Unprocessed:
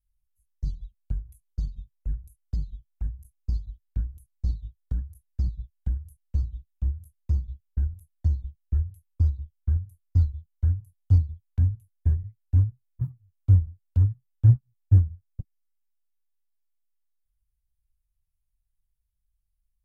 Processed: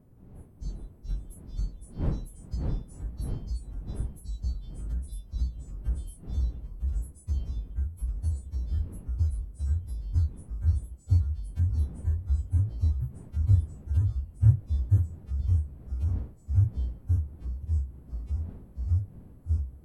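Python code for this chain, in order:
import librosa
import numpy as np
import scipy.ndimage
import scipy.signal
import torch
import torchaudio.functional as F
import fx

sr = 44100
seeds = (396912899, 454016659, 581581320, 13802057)

y = fx.freq_snap(x, sr, grid_st=2)
y = fx.dmg_wind(y, sr, seeds[0], corner_hz=170.0, level_db=-43.0)
y = fx.echo_pitch(y, sr, ms=352, semitones=-2, count=3, db_per_echo=-3.0)
y = F.gain(torch.from_numpy(y), -3.5).numpy()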